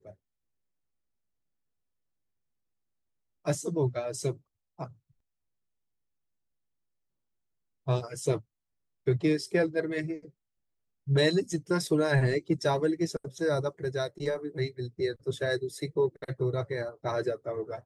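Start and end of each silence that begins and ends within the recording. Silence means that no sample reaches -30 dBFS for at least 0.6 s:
4.84–7.88 s
8.37–9.07 s
10.14–11.08 s

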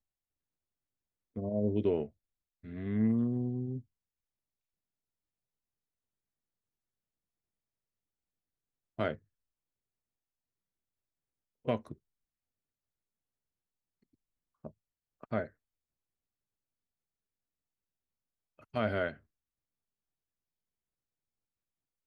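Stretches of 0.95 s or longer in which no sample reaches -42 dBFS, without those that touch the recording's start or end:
3.80–8.99 s
9.15–11.66 s
11.93–14.65 s
15.46–18.74 s

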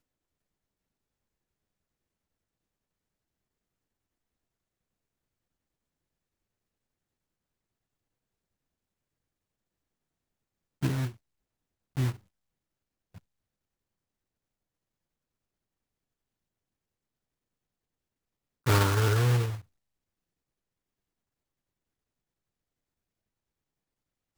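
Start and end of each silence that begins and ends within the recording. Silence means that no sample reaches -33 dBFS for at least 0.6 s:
11.09–11.97 s
12.11–18.67 s

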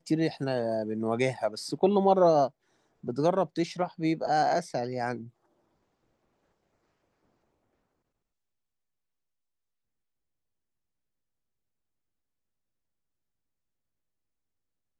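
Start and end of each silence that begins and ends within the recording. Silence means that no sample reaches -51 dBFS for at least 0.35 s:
2.50–3.03 s

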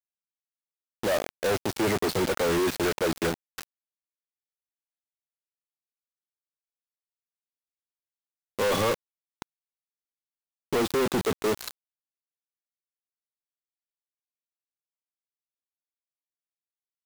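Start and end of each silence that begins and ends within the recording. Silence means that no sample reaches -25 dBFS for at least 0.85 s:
3.63–8.59 s
9.42–10.73 s

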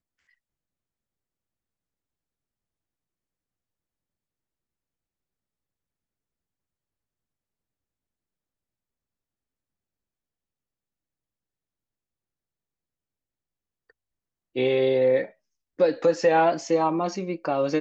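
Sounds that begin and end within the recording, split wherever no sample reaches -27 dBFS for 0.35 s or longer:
14.56–15.24 s

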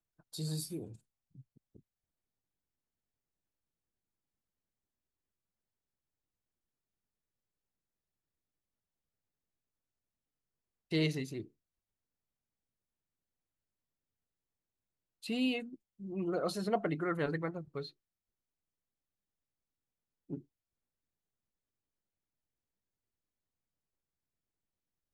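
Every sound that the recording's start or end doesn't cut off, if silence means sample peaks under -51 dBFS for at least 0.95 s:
10.91–11.46 s
15.23–17.90 s
20.30–20.41 s

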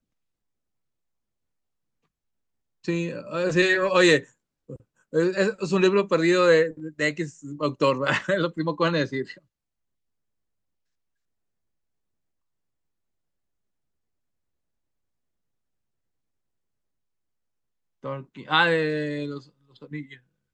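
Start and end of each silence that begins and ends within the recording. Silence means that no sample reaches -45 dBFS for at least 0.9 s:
9.38–18.04 s

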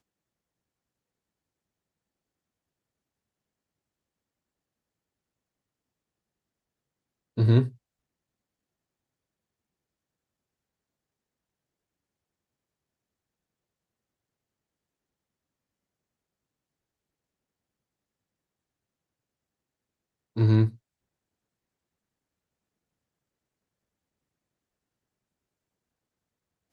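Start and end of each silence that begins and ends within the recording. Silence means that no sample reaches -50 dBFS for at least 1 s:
7.76–20.36 s

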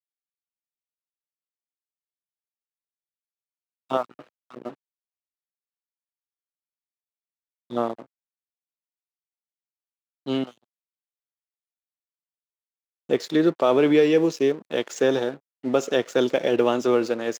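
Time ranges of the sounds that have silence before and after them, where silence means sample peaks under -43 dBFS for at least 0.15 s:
3.90–4.23 s
4.50–4.74 s
7.70–8.04 s
10.26–10.51 s
13.09–15.37 s

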